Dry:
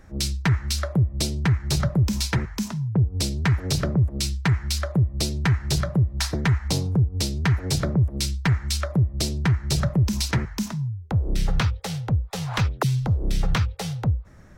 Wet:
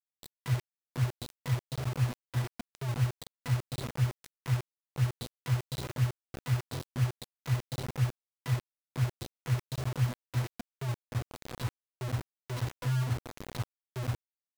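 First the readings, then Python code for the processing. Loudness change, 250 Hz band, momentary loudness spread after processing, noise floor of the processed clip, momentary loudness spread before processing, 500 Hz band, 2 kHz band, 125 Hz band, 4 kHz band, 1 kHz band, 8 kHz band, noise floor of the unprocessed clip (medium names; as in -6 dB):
-10.5 dB, -14.5 dB, 10 LU, under -85 dBFS, 4 LU, -11.0 dB, -12.5 dB, -9.0 dB, -15.5 dB, -10.5 dB, -16.5 dB, -40 dBFS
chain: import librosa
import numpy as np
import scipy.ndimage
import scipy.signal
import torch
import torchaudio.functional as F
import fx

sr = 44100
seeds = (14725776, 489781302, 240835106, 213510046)

y = fx.spec_quant(x, sr, step_db=15)
y = fx.octave_resonator(y, sr, note='B', decay_s=0.27)
y = fx.quant_dither(y, sr, seeds[0], bits=6, dither='none')
y = F.gain(torch.from_numpy(y), -1.0).numpy()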